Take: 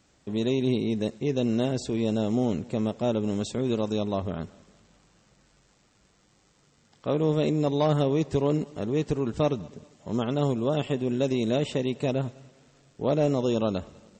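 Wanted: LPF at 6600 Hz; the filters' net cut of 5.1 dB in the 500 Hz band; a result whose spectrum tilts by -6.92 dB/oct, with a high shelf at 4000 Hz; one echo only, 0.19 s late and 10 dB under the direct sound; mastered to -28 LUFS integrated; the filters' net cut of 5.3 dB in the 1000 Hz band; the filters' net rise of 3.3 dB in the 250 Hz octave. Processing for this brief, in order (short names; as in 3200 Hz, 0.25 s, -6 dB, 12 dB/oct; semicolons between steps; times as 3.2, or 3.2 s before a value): LPF 6600 Hz; bell 250 Hz +6 dB; bell 500 Hz -7.5 dB; bell 1000 Hz -5 dB; high shelf 4000 Hz +7.5 dB; echo 0.19 s -10 dB; gain -2 dB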